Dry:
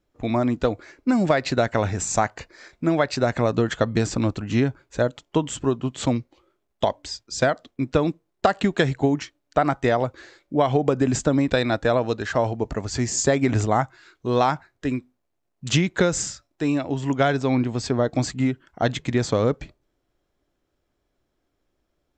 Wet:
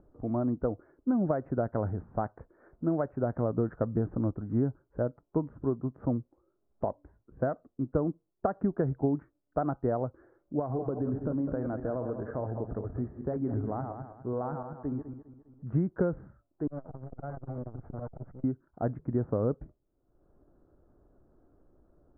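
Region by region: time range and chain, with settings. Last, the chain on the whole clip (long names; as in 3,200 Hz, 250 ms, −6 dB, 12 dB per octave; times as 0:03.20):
0:10.59–0:15.67: feedback delay that plays each chunk backwards 101 ms, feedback 54%, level −8 dB + downward compressor 2 to 1, threshold −22 dBFS
0:16.67–0:18.44: lower of the sound and its delayed copy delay 1.4 ms + downward compressor 5 to 1, threshold −22 dBFS + saturating transformer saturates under 250 Hz
whole clip: Butterworth low-pass 1,400 Hz 48 dB per octave; parametric band 1,100 Hz −7.5 dB 1.4 octaves; upward compression, threshold −39 dBFS; level −6.5 dB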